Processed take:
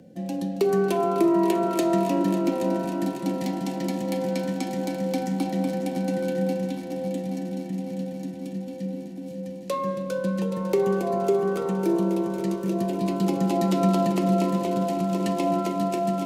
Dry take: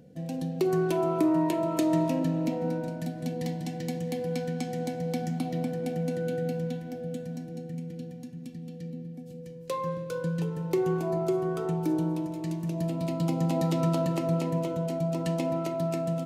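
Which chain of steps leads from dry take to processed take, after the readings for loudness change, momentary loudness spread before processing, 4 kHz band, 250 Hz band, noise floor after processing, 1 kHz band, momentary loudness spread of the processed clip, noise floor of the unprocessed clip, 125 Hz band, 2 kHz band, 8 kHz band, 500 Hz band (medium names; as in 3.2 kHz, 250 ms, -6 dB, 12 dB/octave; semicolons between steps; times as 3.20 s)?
+4.0 dB, 12 LU, +5.0 dB, +5.0 dB, -35 dBFS, +6.5 dB, 10 LU, -42 dBFS, 0.0 dB, +5.0 dB, +5.0 dB, +5.0 dB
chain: frequency shift +25 Hz; multi-head delay 275 ms, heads all three, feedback 70%, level -14.5 dB; trim +4 dB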